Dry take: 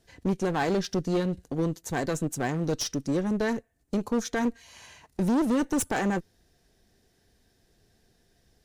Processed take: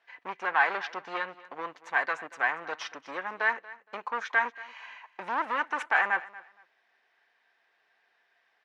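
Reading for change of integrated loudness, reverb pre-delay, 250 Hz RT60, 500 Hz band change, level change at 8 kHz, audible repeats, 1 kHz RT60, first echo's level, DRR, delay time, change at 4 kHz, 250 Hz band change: −1.5 dB, no reverb audible, no reverb audible, −9.5 dB, below −15 dB, 2, no reverb audible, −19.0 dB, no reverb audible, 233 ms, −4.5 dB, −22.5 dB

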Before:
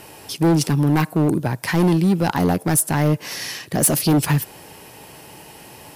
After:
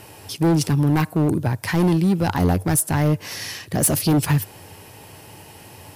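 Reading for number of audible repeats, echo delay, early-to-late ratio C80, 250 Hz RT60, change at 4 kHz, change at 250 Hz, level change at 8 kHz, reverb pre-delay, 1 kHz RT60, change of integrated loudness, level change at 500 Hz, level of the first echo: no echo audible, no echo audible, no reverb audible, no reverb audible, −2.0 dB, −1.5 dB, −2.0 dB, no reverb audible, no reverb audible, −1.0 dB, −2.0 dB, no echo audible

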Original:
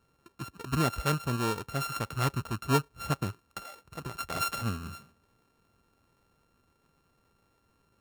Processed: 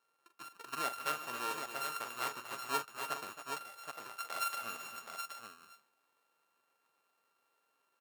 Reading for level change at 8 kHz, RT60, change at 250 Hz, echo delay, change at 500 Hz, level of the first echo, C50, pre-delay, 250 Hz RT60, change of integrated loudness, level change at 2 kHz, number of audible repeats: −4.0 dB, no reverb audible, −19.5 dB, 42 ms, −10.5 dB, −10.0 dB, no reverb audible, no reverb audible, no reverb audible, −8.0 dB, −3.5 dB, 5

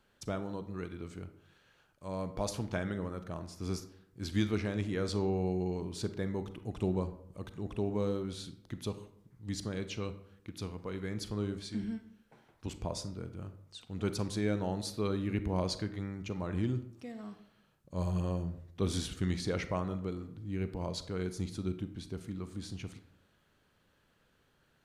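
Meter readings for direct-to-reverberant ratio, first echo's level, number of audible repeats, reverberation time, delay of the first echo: 11.0 dB, no echo audible, no echo audible, 0.70 s, no echo audible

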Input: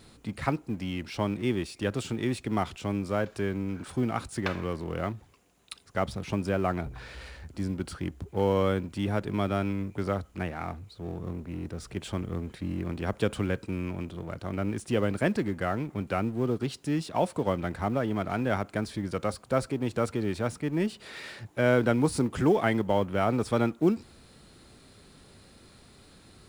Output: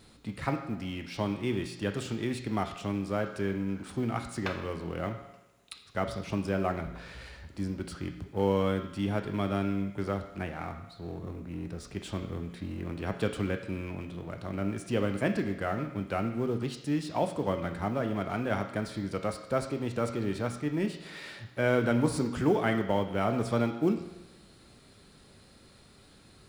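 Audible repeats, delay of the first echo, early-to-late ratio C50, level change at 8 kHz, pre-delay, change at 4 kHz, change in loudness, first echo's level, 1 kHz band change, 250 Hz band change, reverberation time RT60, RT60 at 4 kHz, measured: no echo audible, no echo audible, 9.0 dB, −3.0 dB, 7 ms, −1.5 dB, −2.0 dB, no echo audible, −2.5 dB, −2.0 dB, 1.0 s, 0.95 s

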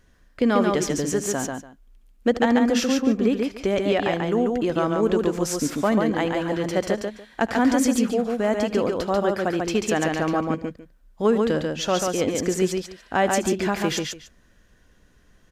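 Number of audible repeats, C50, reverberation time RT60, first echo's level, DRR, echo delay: 3, no reverb audible, no reverb audible, −16.5 dB, no reverb audible, 76 ms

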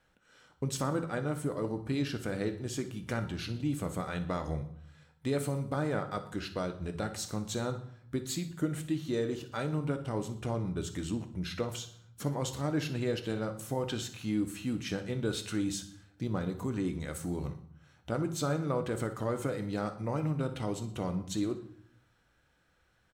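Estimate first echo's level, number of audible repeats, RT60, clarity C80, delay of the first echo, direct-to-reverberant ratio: −14.5 dB, 2, 0.65 s, 15.5 dB, 61 ms, 7.0 dB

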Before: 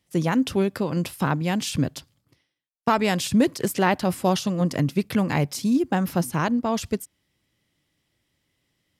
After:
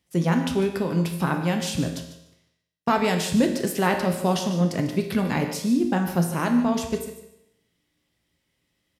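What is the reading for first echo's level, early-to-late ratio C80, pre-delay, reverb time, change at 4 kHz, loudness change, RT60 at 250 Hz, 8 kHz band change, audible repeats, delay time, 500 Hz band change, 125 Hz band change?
−13.0 dB, 8.5 dB, 5 ms, 0.80 s, −0.5 dB, 0.0 dB, 0.75 s, −0.5 dB, 2, 148 ms, +0.5 dB, 0.0 dB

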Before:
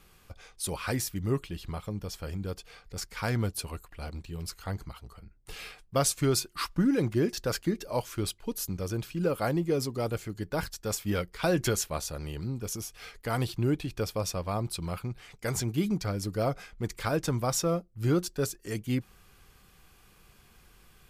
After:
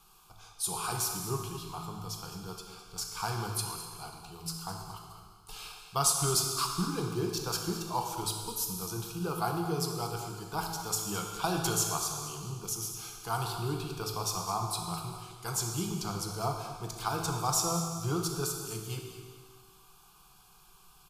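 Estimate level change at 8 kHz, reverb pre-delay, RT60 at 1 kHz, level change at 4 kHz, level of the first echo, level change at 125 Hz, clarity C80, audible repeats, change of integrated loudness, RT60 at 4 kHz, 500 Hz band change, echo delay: +3.5 dB, 18 ms, 1.7 s, +2.0 dB, −13.0 dB, −4.5 dB, 4.5 dB, 1, −1.5 dB, 1.7 s, −6.5 dB, 210 ms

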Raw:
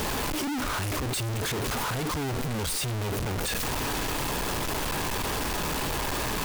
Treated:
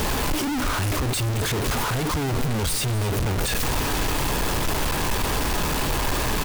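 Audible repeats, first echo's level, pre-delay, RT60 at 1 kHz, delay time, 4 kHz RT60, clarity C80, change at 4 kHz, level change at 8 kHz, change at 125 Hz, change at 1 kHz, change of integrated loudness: 1, −15.0 dB, no reverb audible, no reverb audible, 254 ms, no reverb audible, no reverb audible, +4.0 dB, +4.0 dB, +7.0 dB, +4.0 dB, +5.0 dB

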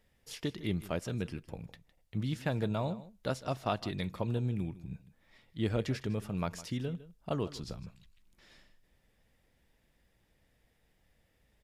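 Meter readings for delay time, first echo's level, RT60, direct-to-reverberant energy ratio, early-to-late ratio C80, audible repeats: 157 ms, −17.0 dB, no reverb audible, no reverb audible, no reverb audible, 1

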